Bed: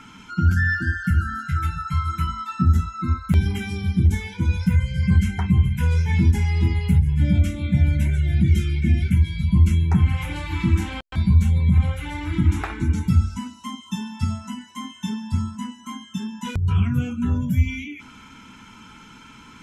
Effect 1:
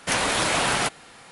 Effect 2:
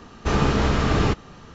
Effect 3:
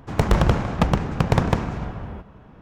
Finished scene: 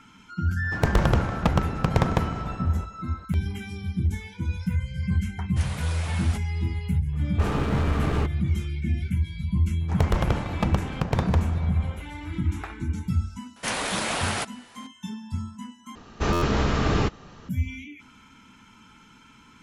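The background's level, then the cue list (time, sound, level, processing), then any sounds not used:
bed -7.5 dB
0.64 s: add 3 -3 dB
5.49 s: add 1 -15.5 dB
7.13 s: add 2 -6 dB + local Wiener filter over 9 samples
9.81 s: add 3 -6 dB
13.56 s: add 1 -5 dB
15.95 s: replace with 2 -2.5 dB + buffer glitch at 0.37 s

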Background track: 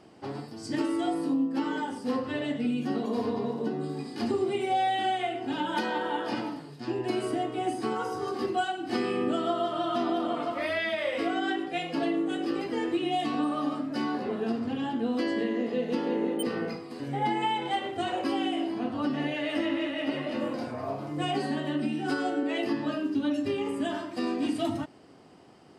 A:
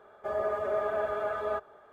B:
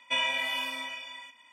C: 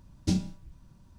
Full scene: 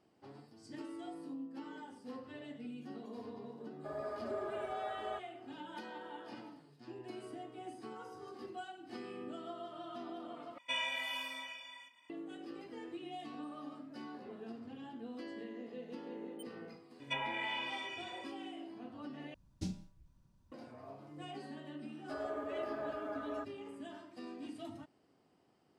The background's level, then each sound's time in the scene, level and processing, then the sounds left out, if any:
background track -17.5 dB
3.60 s: add A -11.5 dB
10.58 s: replace with B -8.5 dB
17.00 s: add B -6.5 dB + low-pass that closes with the level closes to 1.6 kHz, closed at -24.5 dBFS
19.34 s: replace with C -13.5 dB
21.85 s: add A -11 dB

